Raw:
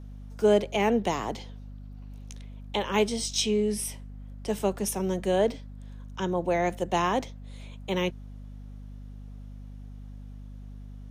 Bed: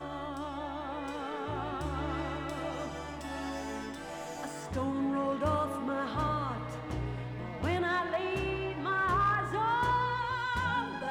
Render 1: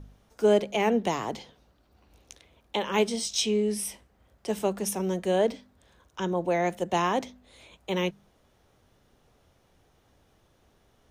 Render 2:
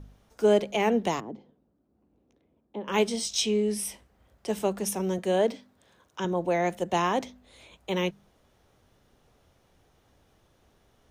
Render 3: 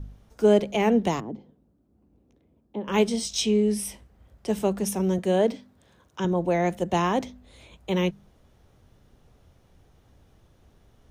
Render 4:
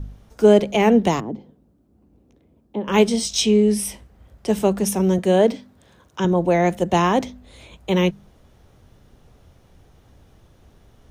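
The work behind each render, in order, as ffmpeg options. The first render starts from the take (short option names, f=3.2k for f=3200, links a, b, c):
-af "bandreject=f=50:t=h:w=4,bandreject=f=100:t=h:w=4,bandreject=f=150:t=h:w=4,bandreject=f=200:t=h:w=4,bandreject=f=250:t=h:w=4"
-filter_complex "[0:a]asettb=1/sr,asplit=3[a][b][c];[a]atrim=end=1.204[d];[b]atrim=start=1.2:end=2.88,asetpts=PTS-STARTPTS,afade=t=in:d=0.004:c=qsin,afade=t=out:st=1.676:d=0.004:c=qsin,bandpass=f=250:t=q:w=1.4[e];[c]atrim=start=2.876[f];[d][e]acrossfade=d=0.004:c1=hsin:c2=qsin[g];[g][f]acrossfade=d=0.004:c1=qsin:c2=hsin,asettb=1/sr,asplit=3[h][i][j];[h]atrim=end=5.184[k];[i]atrim=start=5.18:end=6.25,asetpts=PTS-STARTPTS,afade=t=in:d=0.004:c=qsin,afade=t=out:st=1.066:d=0.004:c=qsin,highpass=120[l];[j]atrim=start=6.246[m];[k][l]acrossfade=d=0.004:c1=hsin:c2=qsin[n];[n][m]acrossfade=d=0.004:c1=qsin:c2=hsin"
-af "lowshelf=f=240:g=10"
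-af "volume=6dB,alimiter=limit=-3dB:level=0:latency=1"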